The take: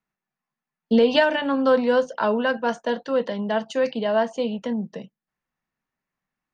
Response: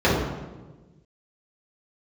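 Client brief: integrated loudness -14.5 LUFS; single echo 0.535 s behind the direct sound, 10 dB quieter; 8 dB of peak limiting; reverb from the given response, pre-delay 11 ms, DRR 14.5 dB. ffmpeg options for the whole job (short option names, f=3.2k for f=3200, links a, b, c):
-filter_complex "[0:a]alimiter=limit=-15dB:level=0:latency=1,aecho=1:1:535:0.316,asplit=2[a][b];[1:a]atrim=start_sample=2205,adelay=11[c];[b][c]afir=irnorm=-1:irlink=0,volume=-36.5dB[d];[a][d]amix=inputs=2:normalize=0,volume=10dB"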